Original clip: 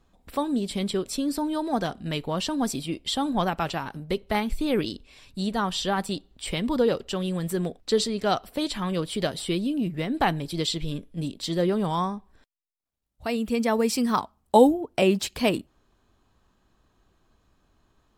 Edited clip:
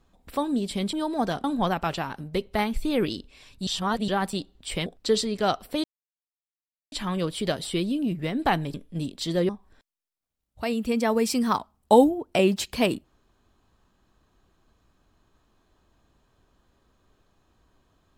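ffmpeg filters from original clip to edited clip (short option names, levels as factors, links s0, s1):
-filter_complex "[0:a]asplit=9[s0][s1][s2][s3][s4][s5][s6][s7][s8];[s0]atrim=end=0.932[s9];[s1]atrim=start=1.468:end=1.982[s10];[s2]atrim=start=3.198:end=5.432[s11];[s3]atrim=start=5.428:end=5.842,asetpts=PTS-STARTPTS,areverse[s12];[s4]atrim=start=5.838:end=6.622[s13];[s5]atrim=start=7.688:end=8.67,asetpts=PTS-STARTPTS,afade=t=out:st=0.978:d=0.004:c=hsin,apad=pad_dur=1.08[s14];[s6]atrim=start=8.67:end=10.492,asetpts=PTS-STARTPTS,afade=t=in:d=0.004:c=hsin[s15];[s7]atrim=start=10.958:end=11.712[s16];[s8]atrim=start=12.118[s17];[s9][s10]acrossfade=d=0.004:c1=hsin:c2=hsin[s18];[s18][s11]acrossfade=d=0.004:c1=hsin:c2=hsin[s19];[s19][s12]acrossfade=d=0.004:c1=hsin:c2=hsin[s20];[s20][s13]acrossfade=d=0.004:c1=hsin:c2=hsin[s21];[s14][s15]concat=n=2:v=0:a=1[s22];[s21][s22]acrossfade=d=0.004:c1=hsin:c2=hsin[s23];[s23][s16]acrossfade=d=0.004:c1=hsin:c2=hsin[s24];[s24][s17]acrossfade=d=0.004:c1=hsin:c2=hsin"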